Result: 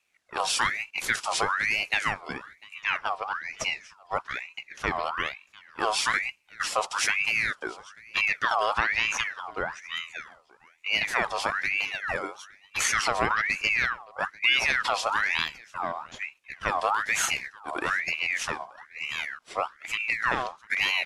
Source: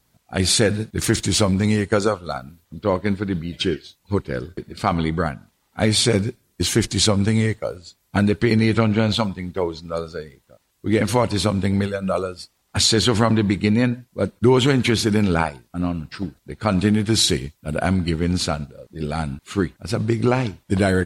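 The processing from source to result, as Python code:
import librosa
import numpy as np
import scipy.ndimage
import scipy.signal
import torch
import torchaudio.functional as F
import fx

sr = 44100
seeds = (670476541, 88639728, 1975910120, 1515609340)

y = scipy.signal.sosfilt(scipy.signal.butter(4, 9200.0, 'lowpass', fs=sr, output='sos'), x)
y = fx.notch(y, sr, hz=7300.0, q=13.0)
y = y + 10.0 ** (-23.5 / 20.0) * np.pad(y, (int(698 * sr / 1000.0), 0))[:len(y)]
y = fx.ring_lfo(y, sr, carrier_hz=1700.0, swing_pct=50, hz=1.1)
y = F.gain(torch.from_numpy(y), -5.5).numpy()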